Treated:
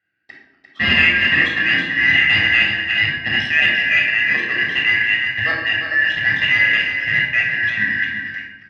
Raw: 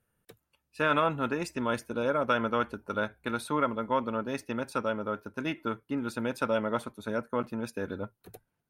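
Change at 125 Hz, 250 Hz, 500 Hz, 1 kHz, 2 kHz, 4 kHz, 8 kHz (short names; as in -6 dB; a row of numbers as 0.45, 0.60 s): +8.5 dB, +1.0 dB, -6.0 dB, -2.5 dB, +24.5 dB, +24.0 dB, n/a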